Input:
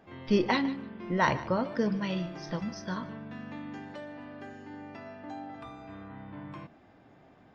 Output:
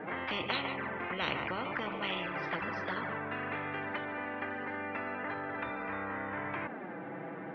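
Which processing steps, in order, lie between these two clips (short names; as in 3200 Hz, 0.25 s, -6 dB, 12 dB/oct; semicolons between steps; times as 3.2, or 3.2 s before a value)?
envelope flanger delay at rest 7 ms, full sweep at -27.5 dBFS; speaker cabinet 250–2000 Hz, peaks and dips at 290 Hz +6 dB, 680 Hz -8 dB, 1100 Hz -6 dB; spectral compressor 10:1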